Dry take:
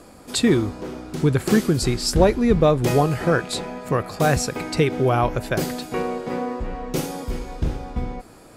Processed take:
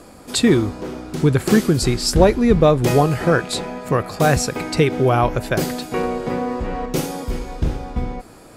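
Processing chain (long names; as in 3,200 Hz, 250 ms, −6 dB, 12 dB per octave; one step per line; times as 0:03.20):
0:06.03–0:06.86: multiband upward and downward compressor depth 70%
level +3 dB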